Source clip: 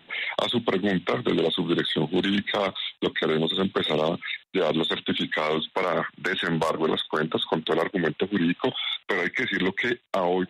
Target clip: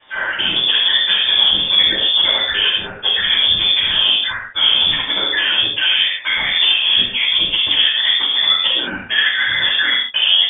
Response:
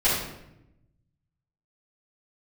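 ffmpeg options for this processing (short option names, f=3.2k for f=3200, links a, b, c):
-filter_complex "[1:a]atrim=start_sample=2205,afade=t=out:st=0.21:d=0.01,atrim=end_sample=9702,asetrate=40572,aresample=44100[a];[0:a][a]afir=irnorm=-1:irlink=0,lowpass=f=3.1k:t=q:w=0.5098,lowpass=f=3.1k:t=q:w=0.6013,lowpass=f=3.1k:t=q:w=0.9,lowpass=f=3.1k:t=q:w=2.563,afreqshift=-3700,volume=-6dB"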